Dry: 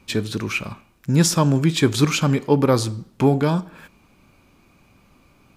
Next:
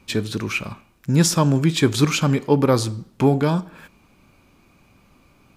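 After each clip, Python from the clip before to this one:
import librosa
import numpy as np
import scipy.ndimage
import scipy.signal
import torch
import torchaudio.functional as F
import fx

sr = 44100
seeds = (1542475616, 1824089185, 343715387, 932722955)

y = x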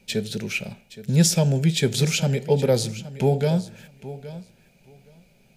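y = fx.fixed_phaser(x, sr, hz=300.0, stages=6)
y = fx.echo_feedback(y, sr, ms=820, feedback_pct=16, wet_db=-15.5)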